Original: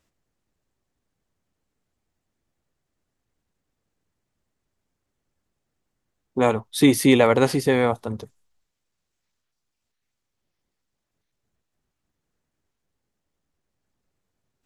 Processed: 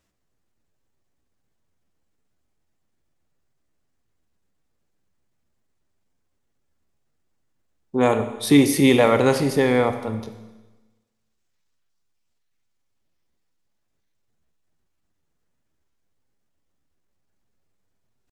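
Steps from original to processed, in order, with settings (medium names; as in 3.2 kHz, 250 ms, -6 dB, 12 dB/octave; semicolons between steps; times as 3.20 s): tempo 0.8×; Schroeder reverb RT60 1.2 s, combs from 28 ms, DRR 9 dB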